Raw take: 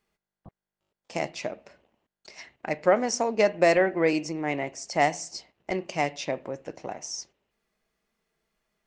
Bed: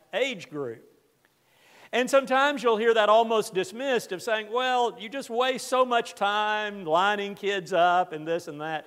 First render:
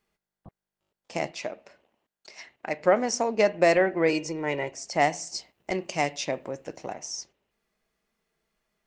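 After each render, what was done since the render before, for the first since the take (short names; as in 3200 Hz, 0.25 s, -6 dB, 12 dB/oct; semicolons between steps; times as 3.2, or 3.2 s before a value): 1.31–2.8 low shelf 200 Hz -9.5 dB; 4.09–4.71 comb 2.1 ms; 5.27–6.94 high shelf 6500 Hz +10.5 dB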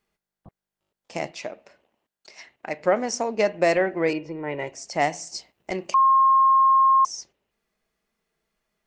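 4.13–4.59 air absorption 370 m; 5.94–7.05 bleep 1070 Hz -13.5 dBFS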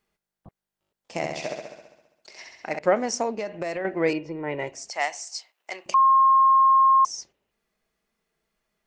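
1.17–2.79 flutter echo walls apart 11.4 m, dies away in 1 s; 3.35–3.85 compressor 5:1, threshold -27 dBFS; 4.9–5.86 HPF 890 Hz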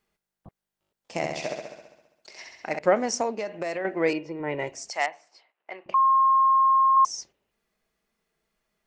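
3.21–4.4 low shelf 110 Hz -12 dB; 5.06–6.97 air absorption 500 m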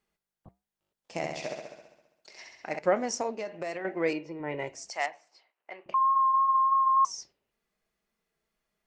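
vibrato 3.3 Hz 14 cents; flange 1 Hz, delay 5.2 ms, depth 2.9 ms, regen -82%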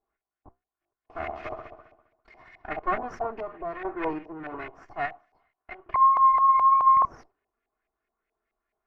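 minimum comb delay 2.8 ms; LFO low-pass saw up 4.7 Hz 730–2200 Hz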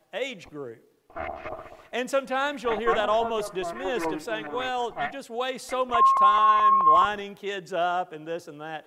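add bed -4.5 dB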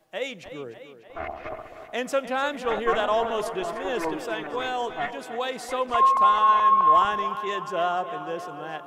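tape echo 0.299 s, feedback 70%, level -11 dB, low-pass 4800 Hz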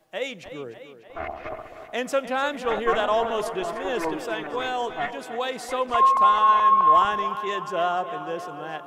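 gain +1 dB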